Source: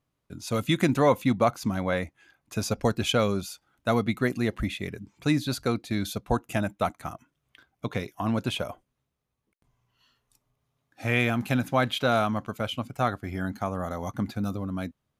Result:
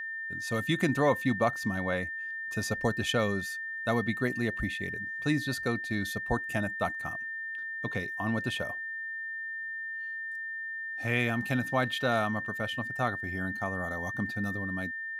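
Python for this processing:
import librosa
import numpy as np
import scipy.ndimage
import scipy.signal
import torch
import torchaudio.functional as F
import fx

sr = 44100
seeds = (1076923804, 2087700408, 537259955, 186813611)

y = x + 10.0 ** (-30.0 / 20.0) * np.sin(2.0 * np.pi * 1800.0 * np.arange(len(x)) / sr)
y = y * librosa.db_to_amplitude(-4.5)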